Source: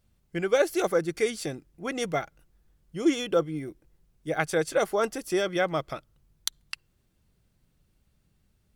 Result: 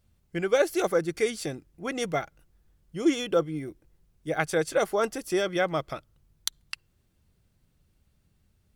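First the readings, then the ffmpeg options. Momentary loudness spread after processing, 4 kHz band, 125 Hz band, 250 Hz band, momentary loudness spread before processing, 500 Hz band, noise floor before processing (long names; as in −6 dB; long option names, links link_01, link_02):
17 LU, 0.0 dB, 0.0 dB, 0.0 dB, 17 LU, 0.0 dB, −70 dBFS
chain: -af "equalizer=frequency=85:width_type=o:width=0.33:gain=6"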